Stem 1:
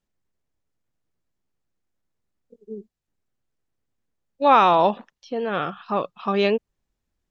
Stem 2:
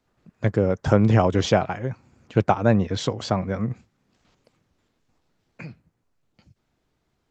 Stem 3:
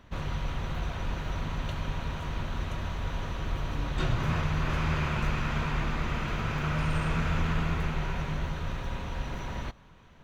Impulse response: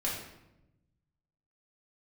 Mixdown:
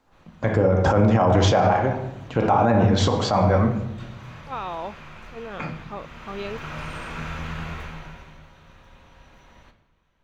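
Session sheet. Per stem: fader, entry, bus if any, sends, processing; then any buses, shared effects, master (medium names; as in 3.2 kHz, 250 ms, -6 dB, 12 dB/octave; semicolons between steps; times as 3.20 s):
-4.5 dB, 0.00 s, no send, compression 2:1, threshold -32 dBFS, peak gain reduction 12 dB; attacks held to a fixed rise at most 350 dB/s
-0.5 dB, 0.00 s, send -4.5 dB, peaking EQ 910 Hz +9.5 dB 1.3 oct
1.57 s -22 dB -> 1.86 s -13.5 dB -> 5.94 s -13.5 dB -> 6.72 s -3.5 dB -> 7.78 s -3.5 dB -> 8.41 s -15.5 dB, 0.00 s, send -8 dB, bass shelf 330 Hz -7.5 dB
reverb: on, RT60 0.90 s, pre-delay 4 ms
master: peak limiter -9 dBFS, peak gain reduction 14 dB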